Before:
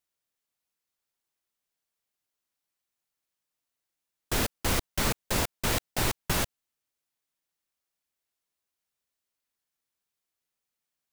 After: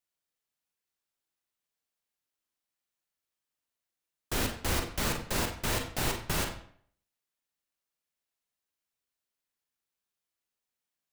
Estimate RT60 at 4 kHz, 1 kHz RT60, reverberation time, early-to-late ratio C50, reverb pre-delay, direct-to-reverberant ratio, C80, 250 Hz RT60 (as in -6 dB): 0.45 s, 0.55 s, 0.60 s, 7.5 dB, 36 ms, 3.0 dB, 10.5 dB, 0.55 s